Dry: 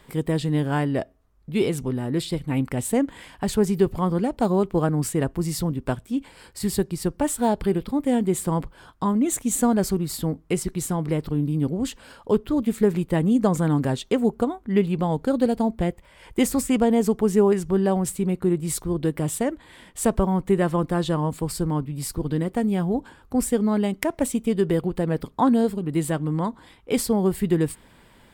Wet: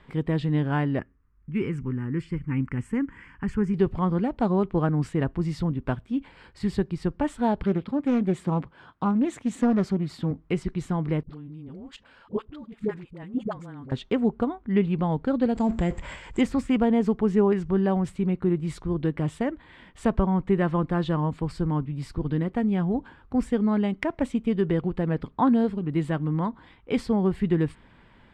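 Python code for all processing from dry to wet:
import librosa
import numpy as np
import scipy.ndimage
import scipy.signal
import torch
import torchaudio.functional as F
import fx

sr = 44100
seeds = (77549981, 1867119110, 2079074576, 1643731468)

y = fx.chain(x, sr, fx.lowpass(hz=11000.0, slope=12),
    fx.fixed_phaser(hz=1600.0, stages=4), at=(0.99, 3.74))
y = fx.chain(y, sr, fx.highpass(hz=110.0, slope=12),
    fx.doppler_dist(depth_ms=0.31), at=(7.63, 10.31))
y = fx.chain(y, sr, fx.level_steps(step_db=17),
    fx.low_shelf(hz=410.0, db=-6.0),
    fx.dispersion(late='highs', ms=66.0, hz=490.0), at=(11.23, 13.92))
y = fx.chain(y, sr, fx.law_mismatch(coded='mu'),
    fx.transient(attack_db=-1, sustain_db=10),
    fx.lowpass_res(hz=7500.0, q=14.0), at=(15.55, 16.41))
y = scipy.signal.sosfilt(scipy.signal.butter(2, 2700.0, 'lowpass', fs=sr, output='sos'), y)
y = fx.peak_eq(y, sr, hz=520.0, db=-4.5, octaves=1.5)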